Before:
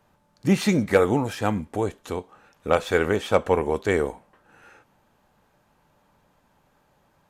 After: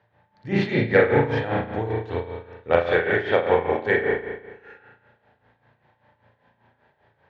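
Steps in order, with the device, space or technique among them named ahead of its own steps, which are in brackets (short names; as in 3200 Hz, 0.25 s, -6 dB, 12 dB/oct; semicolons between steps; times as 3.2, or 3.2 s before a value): 2.86–4.08 HPF 110 Hz 12 dB/oct; combo amplifier with spring reverb and tremolo (spring tank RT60 1.2 s, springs 35 ms, chirp 20 ms, DRR -4 dB; tremolo 5.1 Hz, depth 72%; speaker cabinet 83–4000 Hz, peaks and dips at 110 Hz +6 dB, 190 Hz -8 dB, 290 Hz -6 dB, 1200 Hz -8 dB, 1800 Hz +8 dB, 2700 Hz -3 dB)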